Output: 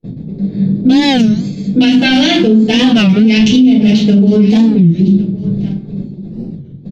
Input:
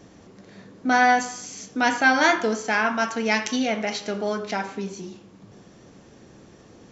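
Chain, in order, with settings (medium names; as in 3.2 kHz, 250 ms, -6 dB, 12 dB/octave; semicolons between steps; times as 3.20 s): local Wiener filter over 15 samples; FFT filter 100 Hz 0 dB, 150 Hz +14 dB, 1.2 kHz -22 dB, 1.9 kHz -13 dB, 2.9 kHz +11 dB, 7.5 kHz -8 dB; gate -41 dBFS, range -42 dB; 3.39–3.87 s: bass shelf 300 Hz +8 dB; simulated room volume 150 m³, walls furnished, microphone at 4.1 m; compression 4:1, threshold -15 dBFS, peak gain reduction 13 dB; delay 1106 ms -21 dB; loudness maximiser +14.5 dB; warped record 33 1/3 rpm, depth 250 cents; trim -1 dB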